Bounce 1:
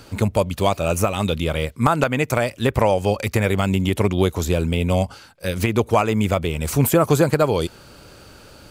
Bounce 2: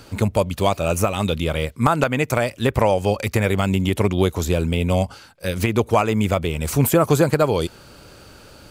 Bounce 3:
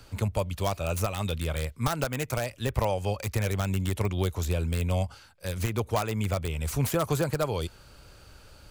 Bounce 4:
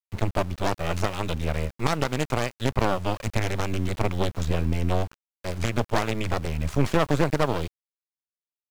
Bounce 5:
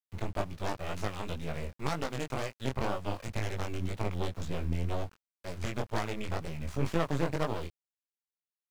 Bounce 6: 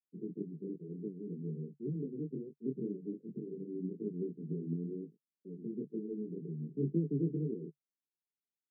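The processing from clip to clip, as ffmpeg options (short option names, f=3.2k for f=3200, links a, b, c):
-af anull
-filter_complex "[0:a]lowshelf=f=86:g=10.5,acrossover=split=110|1100[a][b][c];[c]aeval=exprs='(mod(7.94*val(0)+1,2)-1)/7.94':c=same[d];[a][b][d]amix=inputs=3:normalize=0,equalizer=f=260:t=o:w=2.1:g=-6,volume=-8dB"
-af "aeval=exprs='0.266*(cos(1*acos(clip(val(0)/0.266,-1,1)))-cos(1*PI/2))+0.075*(cos(6*acos(clip(val(0)/0.266,-1,1)))-cos(6*PI/2))':c=same,adynamicsmooth=sensitivity=2:basefreq=3.9k,aeval=exprs='val(0)*gte(abs(val(0)),0.01)':c=same,volume=1.5dB"
-af "flanger=delay=18:depth=5.8:speed=2,volume=-6dB"
-af "asuperpass=centerf=250:order=20:qfactor=0.84,volume=1dB"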